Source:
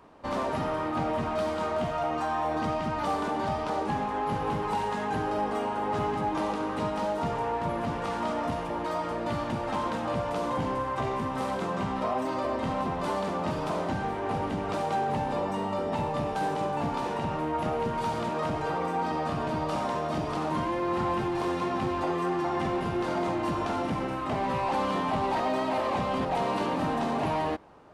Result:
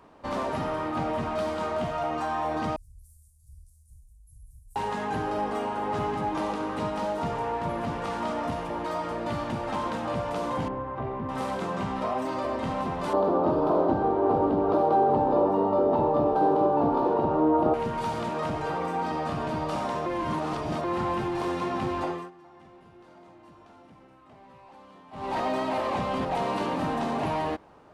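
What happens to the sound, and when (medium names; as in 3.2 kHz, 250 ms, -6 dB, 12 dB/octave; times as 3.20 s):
2.76–4.76 s: inverse Chebyshev band-stop 260–2800 Hz, stop band 70 dB
10.68–11.29 s: tape spacing loss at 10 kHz 44 dB
13.13–17.74 s: FFT filter 210 Hz 0 dB, 320 Hz +12 dB, 790 Hz +6 dB, 1.3 kHz +2 dB, 2 kHz -13 dB, 4.2 kHz -8 dB, 8 kHz -24 dB, 12 kHz -8 dB
20.06–20.84 s: reverse
22.03–25.39 s: dip -23 dB, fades 0.28 s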